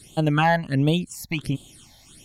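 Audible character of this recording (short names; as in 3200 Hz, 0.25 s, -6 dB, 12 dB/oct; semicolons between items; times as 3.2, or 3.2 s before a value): phasing stages 8, 1.4 Hz, lowest notch 360–1800 Hz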